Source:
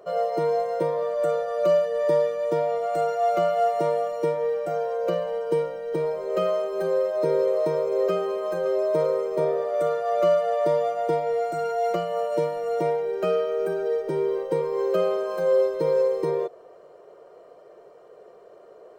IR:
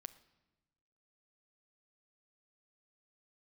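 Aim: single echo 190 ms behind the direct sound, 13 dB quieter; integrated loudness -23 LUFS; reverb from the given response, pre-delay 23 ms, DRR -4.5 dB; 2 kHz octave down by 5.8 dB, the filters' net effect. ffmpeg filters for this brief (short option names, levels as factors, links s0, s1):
-filter_complex "[0:a]equalizer=f=2000:t=o:g=-8,aecho=1:1:190:0.224,asplit=2[s0][s1];[1:a]atrim=start_sample=2205,adelay=23[s2];[s1][s2]afir=irnorm=-1:irlink=0,volume=3.16[s3];[s0][s3]amix=inputs=2:normalize=0,volume=0.596"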